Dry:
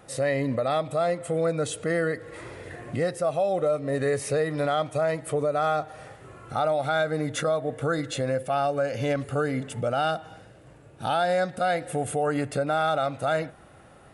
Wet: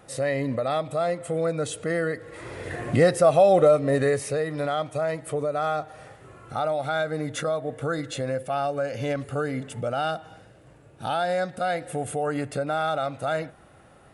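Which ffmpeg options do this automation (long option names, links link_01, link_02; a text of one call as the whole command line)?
ffmpeg -i in.wav -af "volume=8dB,afade=type=in:start_time=2.38:duration=0.44:silence=0.375837,afade=type=out:start_time=3.6:duration=0.7:silence=0.334965" out.wav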